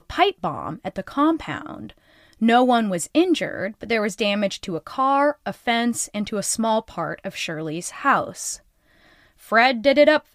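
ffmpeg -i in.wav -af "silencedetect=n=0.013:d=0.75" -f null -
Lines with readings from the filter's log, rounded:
silence_start: 8.56
silence_end: 9.43 | silence_duration: 0.87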